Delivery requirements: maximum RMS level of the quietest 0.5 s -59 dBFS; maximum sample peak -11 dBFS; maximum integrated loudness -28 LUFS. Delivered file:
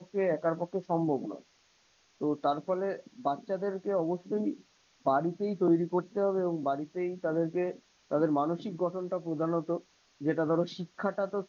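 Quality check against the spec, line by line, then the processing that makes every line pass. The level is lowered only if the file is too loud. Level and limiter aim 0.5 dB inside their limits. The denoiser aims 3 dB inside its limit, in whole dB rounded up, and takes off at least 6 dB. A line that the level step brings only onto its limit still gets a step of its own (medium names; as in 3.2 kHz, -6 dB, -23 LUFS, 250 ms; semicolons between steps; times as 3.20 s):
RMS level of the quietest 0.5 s -67 dBFS: pass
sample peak -14.5 dBFS: pass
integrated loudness -31.5 LUFS: pass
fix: none needed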